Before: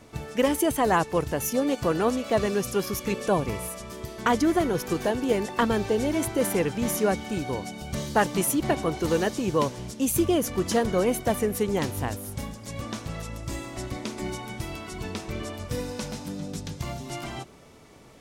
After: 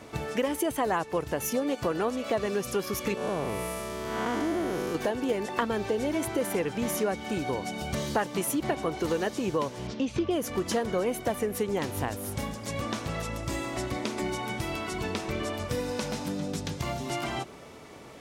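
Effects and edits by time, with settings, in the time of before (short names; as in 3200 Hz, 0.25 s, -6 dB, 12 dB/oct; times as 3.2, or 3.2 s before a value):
3.17–4.95 time blur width 0.241 s
9.87–10.31 LPF 4900 Hz 24 dB/oct
whole clip: HPF 45 Hz; tone controls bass -5 dB, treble -4 dB; compressor 3:1, threshold -34 dBFS; gain +6 dB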